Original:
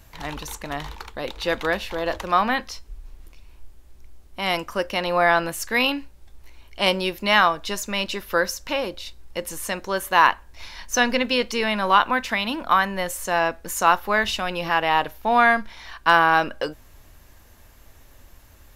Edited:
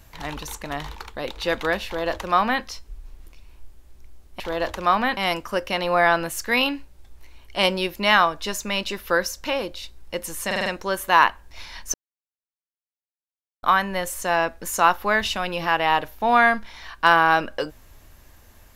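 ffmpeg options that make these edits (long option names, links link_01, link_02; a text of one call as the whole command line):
ffmpeg -i in.wav -filter_complex "[0:a]asplit=9[link_01][link_02][link_03][link_04][link_05][link_06][link_07][link_08][link_09];[link_01]atrim=end=4.402[link_10];[link_02]atrim=start=1.858:end=2.632[link_11];[link_03]atrim=start=4.398:end=9.742[link_12];[link_04]atrim=start=9.688:end=9.742[link_13];[link_05]atrim=start=9.688:end=9.742[link_14];[link_06]atrim=start=9.688:end=9.742[link_15];[link_07]atrim=start=9.688:end=10.97,asetpts=PTS-STARTPTS,afade=type=out:start_time=1.278:duration=0.004:curve=hsin[link_16];[link_08]atrim=start=10.97:end=12.66,asetpts=PTS-STARTPTS,volume=0[link_17];[link_09]atrim=start=12.66,asetpts=PTS-STARTPTS,afade=type=in:duration=0.004:curve=hsin[link_18];[link_10][link_11]acrossfade=duration=0.004:curve1=hsin:curve2=hsin[link_19];[link_19][link_12]acrossfade=duration=0.004:curve1=hsin:curve2=hsin[link_20];[link_20][link_13]acrossfade=duration=0.004:curve1=hsin:curve2=hsin[link_21];[link_21][link_14]acrossfade=duration=0.004:curve1=hsin:curve2=hsin[link_22];[link_22][link_15]acrossfade=duration=0.004:curve1=hsin:curve2=hsin[link_23];[link_16][link_17][link_18]concat=n=3:v=0:a=1[link_24];[link_23][link_24]acrossfade=duration=0.004:curve1=hsin:curve2=hsin" out.wav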